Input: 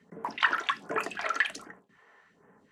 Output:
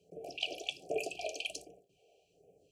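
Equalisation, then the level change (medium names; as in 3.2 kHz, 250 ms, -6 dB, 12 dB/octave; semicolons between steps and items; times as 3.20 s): brick-wall FIR band-stop 790–2300 Hz; static phaser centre 550 Hz, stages 4; band-stop 3.7 kHz, Q 8.4; +1.0 dB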